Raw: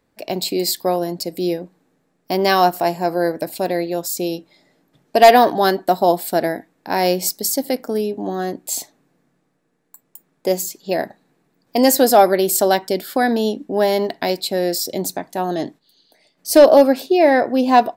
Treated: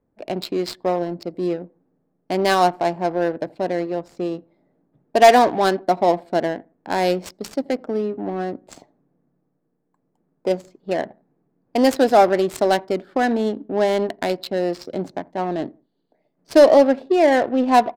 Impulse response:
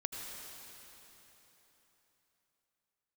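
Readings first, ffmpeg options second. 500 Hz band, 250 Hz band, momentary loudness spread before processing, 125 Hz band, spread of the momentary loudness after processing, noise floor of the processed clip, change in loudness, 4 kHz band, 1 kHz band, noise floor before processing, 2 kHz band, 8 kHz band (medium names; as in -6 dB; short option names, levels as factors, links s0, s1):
-2.0 dB, -2.0 dB, 13 LU, -2.0 dB, 14 LU, -72 dBFS, -2.5 dB, -5.5 dB, -2.5 dB, -67 dBFS, -2.0 dB, -13.0 dB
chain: -filter_complex "[0:a]asplit=2[s0][s1];[s1]adelay=85,lowpass=f=4200:p=1,volume=0.0668,asplit=2[s2][s3];[s3]adelay=85,lowpass=f=4200:p=1,volume=0.32[s4];[s0][s2][s4]amix=inputs=3:normalize=0,adynamicsmooth=sensitivity=1.5:basefreq=870,volume=0.794"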